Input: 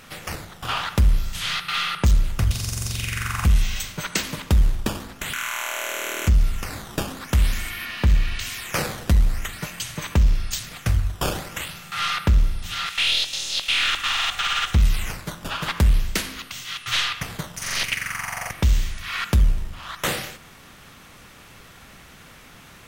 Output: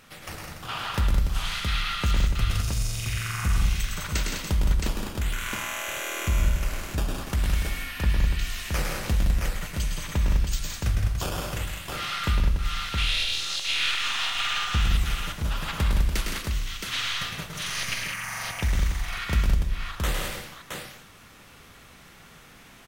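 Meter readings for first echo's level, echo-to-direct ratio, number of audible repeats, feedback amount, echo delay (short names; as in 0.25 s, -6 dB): -5.0 dB, 1.5 dB, 5, no steady repeat, 0.107 s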